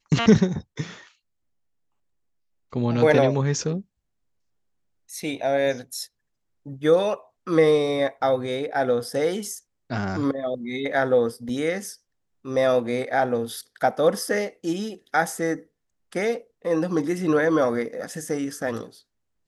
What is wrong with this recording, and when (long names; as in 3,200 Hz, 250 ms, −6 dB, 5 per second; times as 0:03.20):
0:11.49: drop-out 2 ms